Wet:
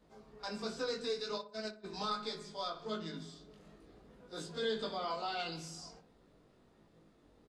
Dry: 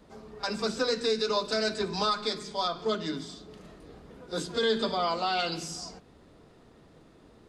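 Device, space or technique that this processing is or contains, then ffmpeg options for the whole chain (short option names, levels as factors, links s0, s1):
double-tracked vocal: -filter_complex "[0:a]asplit=2[s0][s1];[s1]adelay=24,volume=0.282[s2];[s0][s2]amix=inputs=2:normalize=0,flanger=delay=18:depth=2.5:speed=1.3,asplit=3[s3][s4][s5];[s3]afade=t=out:st=1.37:d=0.02[s6];[s4]agate=range=0.0224:threshold=0.0398:ratio=16:detection=peak,afade=t=in:st=1.37:d=0.02,afade=t=out:st=1.84:d=0.02[s7];[s5]afade=t=in:st=1.84:d=0.02[s8];[s6][s7][s8]amix=inputs=3:normalize=0,asplit=2[s9][s10];[s10]adelay=61,lowpass=f=1400:p=1,volume=0.282,asplit=2[s11][s12];[s12]adelay=61,lowpass=f=1400:p=1,volume=0.49,asplit=2[s13][s14];[s14]adelay=61,lowpass=f=1400:p=1,volume=0.49,asplit=2[s15][s16];[s16]adelay=61,lowpass=f=1400:p=1,volume=0.49,asplit=2[s17][s18];[s18]adelay=61,lowpass=f=1400:p=1,volume=0.49[s19];[s9][s11][s13][s15][s17][s19]amix=inputs=6:normalize=0,volume=0.422"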